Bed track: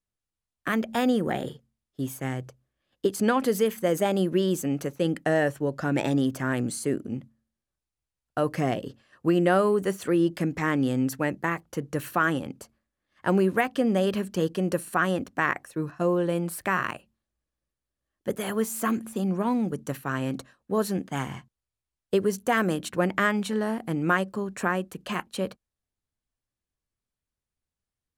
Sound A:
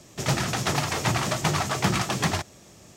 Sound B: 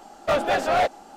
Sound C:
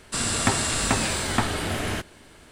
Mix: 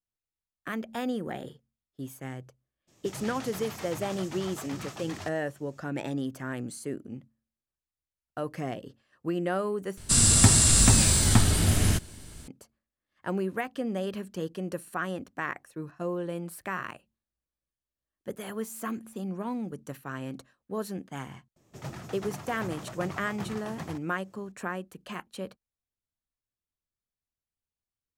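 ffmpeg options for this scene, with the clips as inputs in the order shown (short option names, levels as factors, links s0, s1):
-filter_complex "[1:a]asplit=2[s0][s1];[0:a]volume=0.398[s2];[s0]alimiter=limit=0.126:level=0:latency=1:release=11[s3];[3:a]bass=f=250:g=15,treble=f=4000:g=14[s4];[s1]equalizer=f=5000:w=0.37:g=-8.5[s5];[s2]asplit=2[s6][s7];[s6]atrim=end=9.974[s8];[s4]atrim=end=2.51,asetpts=PTS-STARTPTS,volume=0.531[s9];[s7]atrim=start=12.476[s10];[s3]atrim=end=2.96,asetpts=PTS-STARTPTS,volume=0.211,afade=t=in:d=0.02,afade=t=out:st=2.94:d=0.02,adelay=2870[s11];[s5]atrim=end=2.96,asetpts=PTS-STARTPTS,volume=0.211,afade=t=in:d=0.004:c=hsin,afade=t=out:st=2.956:d=0.004:c=hsin,adelay=21560[s12];[s8][s9]acrossfade=d=0.004:c1=hsin:c2=hsin[s13];[s13][s10]acrossfade=d=0.004:c1=hsin:c2=hsin[s14];[s14][s11][s12]amix=inputs=3:normalize=0"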